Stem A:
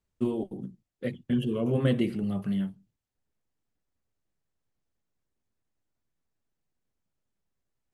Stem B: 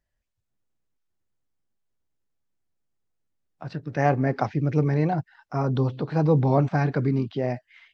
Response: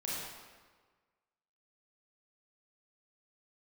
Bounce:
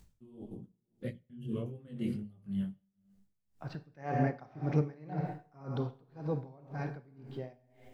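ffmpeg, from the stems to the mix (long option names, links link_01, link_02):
-filter_complex "[0:a]acompressor=mode=upward:threshold=-43dB:ratio=2.5,flanger=delay=17.5:depth=4.9:speed=1.7,bass=frequency=250:gain=11,treble=frequency=4000:gain=5,volume=-7dB,asplit=2[link_01][link_02];[link_02]volume=-17dB[link_03];[1:a]volume=-8dB,afade=type=out:start_time=5.34:duration=0.69:silence=0.398107,asplit=3[link_04][link_05][link_06];[link_05]volume=-5dB[link_07];[link_06]apad=whole_len=350085[link_08];[link_01][link_08]sidechaincompress=threshold=-45dB:ratio=8:attack=16:release=117[link_09];[2:a]atrim=start_sample=2205[link_10];[link_03][link_07]amix=inputs=2:normalize=0[link_11];[link_11][link_10]afir=irnorm=-1:irlink=0[link_12];[link_09][link_04][link_12]amix=inputs=3:normalize=0,aeval=exprs='val(0)*pow(10,-25*(0.5-0.5*cos(2*PI*1.9*n/s))/20)':channel_layout=same"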